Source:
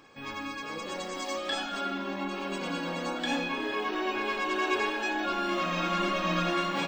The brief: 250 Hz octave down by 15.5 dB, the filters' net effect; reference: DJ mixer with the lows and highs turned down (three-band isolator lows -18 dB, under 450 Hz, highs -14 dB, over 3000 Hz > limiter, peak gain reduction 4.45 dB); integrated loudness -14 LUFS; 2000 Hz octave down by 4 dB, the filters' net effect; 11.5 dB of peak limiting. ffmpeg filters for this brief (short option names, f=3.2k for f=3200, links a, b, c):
-filter_complex "[0:a]equalizer=f=250:t=o:g=-6.5,equalizer=f=2k:t=o:g=-3.5,alimiter=level_in=4.5dB:limit=-24dB:level=0:latency=1,volume=-4.5dB,acrossover=split=450 3000:gain=0.126 1 0.2[a][b][c];[a][b][c]amix=inputs=3:normalize=0,volume=26.5dB,alimiter=limit=-5.5dB:level=0:latency=1"